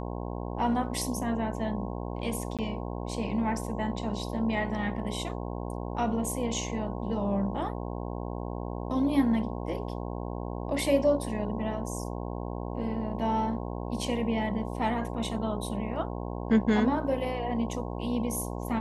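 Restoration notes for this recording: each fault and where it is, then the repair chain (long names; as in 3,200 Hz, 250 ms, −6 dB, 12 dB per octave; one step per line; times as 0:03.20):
mains buzz 60 Hz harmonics 18 −35 dBFS
0:02.57–0:02.59: drop-out 17 ms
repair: hum removal 60 Hz, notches 18
repair the gap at 0:02.57, 17 ms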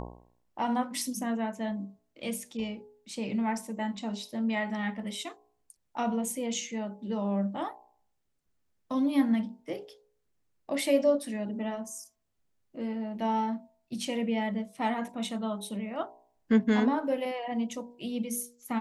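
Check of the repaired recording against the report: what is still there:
none of them is left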